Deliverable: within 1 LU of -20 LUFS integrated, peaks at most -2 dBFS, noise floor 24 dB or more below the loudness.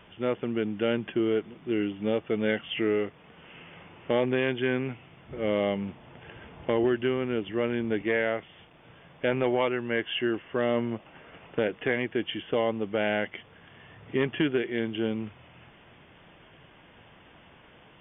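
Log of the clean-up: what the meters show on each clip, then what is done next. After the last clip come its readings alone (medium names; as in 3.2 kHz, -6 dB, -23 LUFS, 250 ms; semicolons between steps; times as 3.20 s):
loudness -29.0 LUFS; peak level -13.5 dBFS; loudness target -20.0 LUFS
-> trim +9 dB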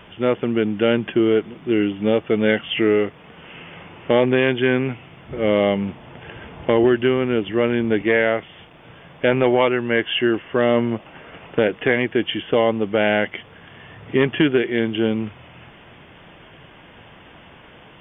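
loudness -20.0 LUFS; peak level -4.5 dBFS; noise floor -46 dBFS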